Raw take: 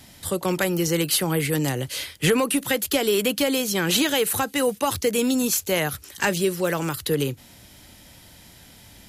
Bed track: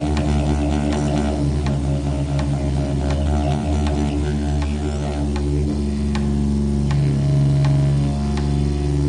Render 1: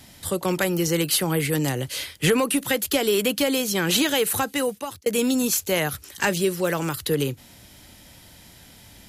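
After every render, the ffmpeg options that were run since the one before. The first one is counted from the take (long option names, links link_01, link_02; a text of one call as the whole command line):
ffmpeg -i in.wav -filter_complex "[0:a]asplit=2[link_01][link_02];[link_01]atrim=end=5.06,asetpts=PTS-STARTPTS,afade=type=out:start_time=4.51:duration=0.55[link_03];[link_02]atrim=start=5.06,asetpts=PTS-STARTPTS,afade=type=in:duration=0.004:curve=hsin[link_04];[link_03][link_04]concat=n=2:v=0:a=1" out.wav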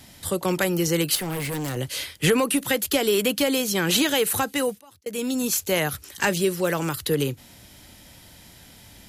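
ffmpeg -i in.wav -filter_complex "[0:a]asettb=1/sr,asplit=3[link_01][link_02][link_03];[link_01]atrim=end=1.154[link_04];[link_02]atrim=start=1.15:end=1.77,asetpts=PTS-STARTPTS,afade=type=in:duration=0.004:curve=qsin,afade=type=out:start_time=0.616:duration=0.004:curve=qsin,asoftclip=type=hard:threshold=-26.5dB[link_05];[link_03]atrim=start=1.766[link_06];[link_04][link_05]acrossfade=duration=0.004:curve1=hsin:curve2=qsin[link_07];[link_07][link_06]acrossfade=duration=0.004:curve1=qsin:curve2=hsin,asplit=2[link_08][link_09];[link_08]atrim=end=4.81,asetpts=PTS-STARTPTS,afade=type=out:start_time=4.806:duration=0.004:curve=hsin:silence=0.0630957[link_10];[link_09]atrim=start=4.81,asetpts=PTS-STARTPTS,afade=type=in:duration=0.84:silence=0.0630957[link_11];[link_10][link_11]concat=n=2:v=0:a=1" out.wav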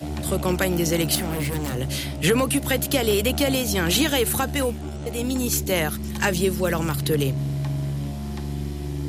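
ffmpeg -i in.wav -i bed.wav -filter_complex "[1:a]volume=-10dB[link_01];[0:a][link_01]amix=inputs=2:normalize=0" out.wav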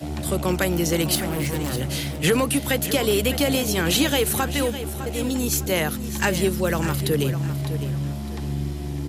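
ffmpeg -i in.wav -af "aecho=1:1:606|1212|1818:0.251|0.0804|0.0257" out.wav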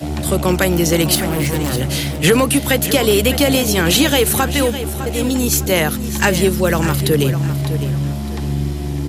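ffmpeg -i in.wav -af "volume=7dB,alimiter=limit=-3dB:level=0:latency=1" out.wav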